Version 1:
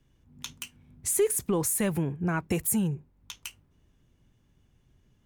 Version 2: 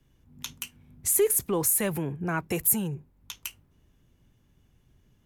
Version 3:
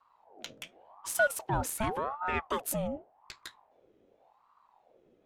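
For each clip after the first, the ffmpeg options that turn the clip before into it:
-filter_complex "[0:a]equalizer=f=12000:w=4.2:g=10,acrossover=split=310|1700|7000[s0][s1][s2][s3];[s0]alimiter=level_in=2.11:limit=0.0631:level=0:latency=1,volume=0.473[s4];[s4][s1][s2][s3]amix=inputs=4:normalize=0,volume=1.19"
-af "adynamicsmooth=sensitivity=2:basefreq=3900,aeval=exprs='val(0)*sin(2*PI*730*n/s+730*0.5/0.88*sin(2*PI*0.88*n/s))':c=same"

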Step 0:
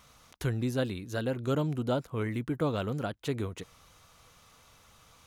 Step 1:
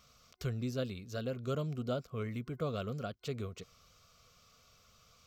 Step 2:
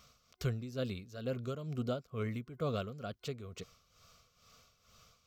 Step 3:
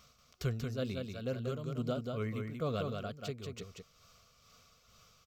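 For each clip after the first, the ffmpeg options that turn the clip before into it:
-af "superequalizer=6b=0.398:9b=0.282:11b=0.501:14b=1.78:16b=0.282,volume=0.531"
-af "tremolo=f=2.2:d=0.72,volume=1.33"
-af "aecho=1:1:186:0.596"

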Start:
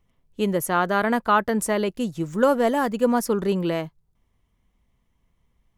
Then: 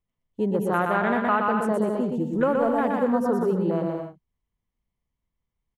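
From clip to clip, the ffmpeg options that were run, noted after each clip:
-af "afwtdn=0.0398,aecho=1:1:120|198|248.7|281.7|303.1:0.631|0.398|0.251|0.158|0.1,acompressor=threshold=0.0891:ratio=2"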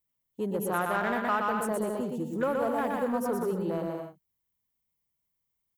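-filter_complex "[0:a]aemphasis=mode=production:type=bsi,asplit=2[s0][s1];[s1]asoftclip=type=hard:threshold=0.0501,volume=0.335[s2];[s0][s2]amix=inputs=2:normalize=0,equalizer=f=99:w=0.92:g=7,volume=0.473"

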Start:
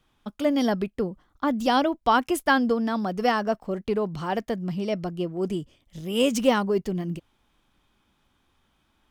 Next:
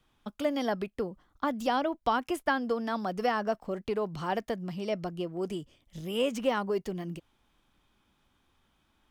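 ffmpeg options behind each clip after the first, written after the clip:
-filter_complex "[0:a]acrossover=split=410|2700[s0][s1][s2];[s0]acompressor=threshold=0.02:ratio=4[s3];[s1]acompressor=threshold=0.0794:ratio=4[s4];[s2]acompressor=threshold=0.00708:ratio=4[s5];[s3][s4][s5]amix=inputs=3:normalize=0,volume=0.75"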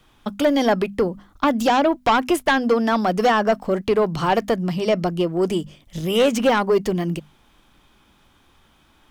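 -filter_complex "[0:a]asplit=2[s0][s1];[s1]aeval=exprs='0.224*sin(PI/2*3.16*val(0)/0.224)':c=same,volume=0.473[s2];[s0][s2]amix=inputs=2:normalize=0,bandreject=f=50:t=h:w=6,bandreject=f=100:t=h:w=6,bandreject=f=150:t=h:w=6,bandreject=f=200:t=h:w=6,bandreject=f=250:t=h:w=6,volume=1.5"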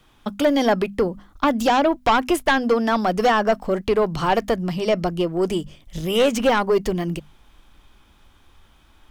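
-af "asubboost=boost=2.5:cutoff=88"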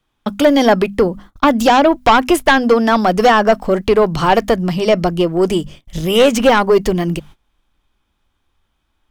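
-af "agate=range=0.1:threshold=0.00794:ratio=16:detection=peak,volume=2.24"

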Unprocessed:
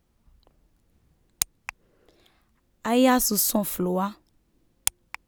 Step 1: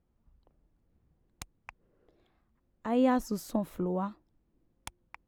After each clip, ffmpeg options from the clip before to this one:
-af "lowpass=f=1000:p=1,volume=0.531"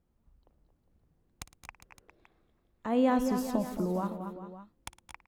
-af "aecho=1:1:57|111|218|233|406|564:0.141|0.112|0.2|0.316|0.211|0.168"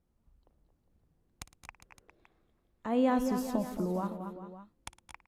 -af "volume=0.841" -ar 32000 -c:a libvorbis -b:a 96k

